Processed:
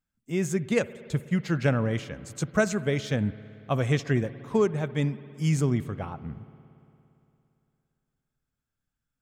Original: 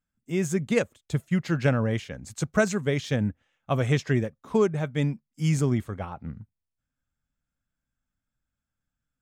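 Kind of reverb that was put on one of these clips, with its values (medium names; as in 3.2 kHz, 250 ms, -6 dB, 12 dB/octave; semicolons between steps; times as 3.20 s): spring tank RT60 2.9 s, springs 57 ms, chirp 45 ms, DRR 16 dB; trim -1 dB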